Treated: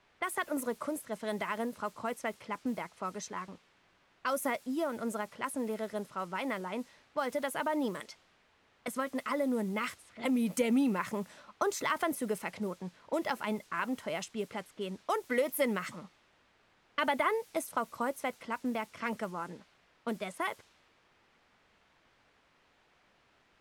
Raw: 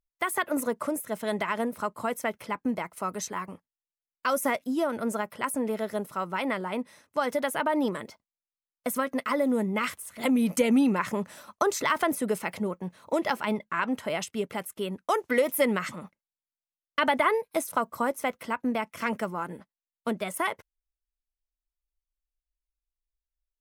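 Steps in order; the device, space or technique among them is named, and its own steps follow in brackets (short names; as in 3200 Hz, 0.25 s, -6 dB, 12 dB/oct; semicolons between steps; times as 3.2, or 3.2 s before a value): 8–8.88 tilt +4.5 dB/oct; cassette deck with a dynamic noise filter (white noise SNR 23 dB; low-pass opened by the level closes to 2000 Hz, open at -25 dBFS); gain -6 dB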